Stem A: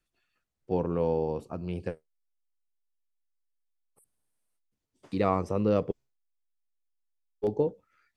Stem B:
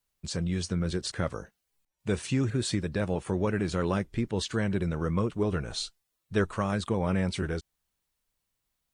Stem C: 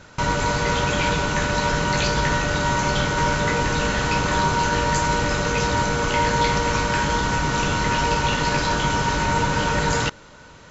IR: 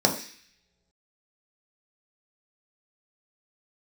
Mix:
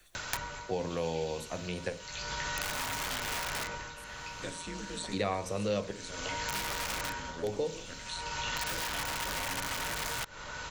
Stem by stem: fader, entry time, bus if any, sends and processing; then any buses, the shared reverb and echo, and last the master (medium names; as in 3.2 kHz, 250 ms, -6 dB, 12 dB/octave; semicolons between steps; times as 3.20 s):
+0.5 dB, 0.00 s, no bus, send -18 dB, none
-14.5 dB, 2.35 s, bus A, send -15 dB, ring modulator 85 Hz
-0.5 dB, 0.15 s, bus A, no send, compression 4:1, threshold -24 dBFS, peak gain reduction 8 dB; auto duck -24 dB, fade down 0.35 s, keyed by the first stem
bus A: 0.0 dB, integer overflow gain 21 dB; compression, threshold -32 dBFS, peak gain reduction 7.5 dB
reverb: on, pre-delay 3 ms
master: peaking EQ 250 Hz -12 dB 2.6 oct; three bands compressed up and down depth 70%